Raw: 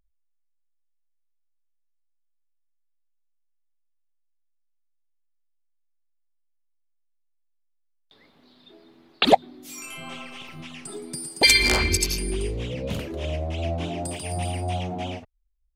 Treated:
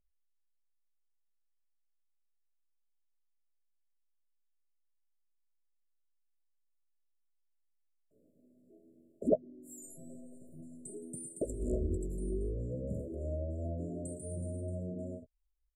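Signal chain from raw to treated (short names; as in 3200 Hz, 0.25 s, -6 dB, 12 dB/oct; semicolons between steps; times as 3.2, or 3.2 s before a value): brick-wall FIR band-stop 670–7000 Hz; doubler 16 ms -11.5 dB; treble ducked by the level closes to 1100 Hz, closed at -16.5 dBFS; gain -8.5 dB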